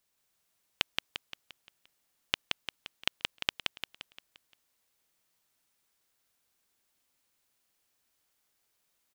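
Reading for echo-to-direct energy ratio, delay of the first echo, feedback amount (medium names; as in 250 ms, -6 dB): -2.0 dB, 174 ms, 47%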